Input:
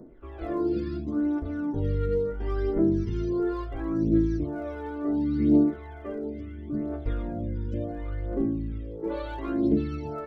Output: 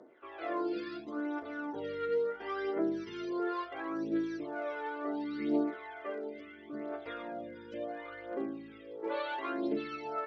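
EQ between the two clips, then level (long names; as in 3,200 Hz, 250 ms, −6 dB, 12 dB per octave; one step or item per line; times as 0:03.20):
band-pass filter 550–2,900 Hz
high-shelf EQ 2,100 Hz +11.5 dB
0.0 dB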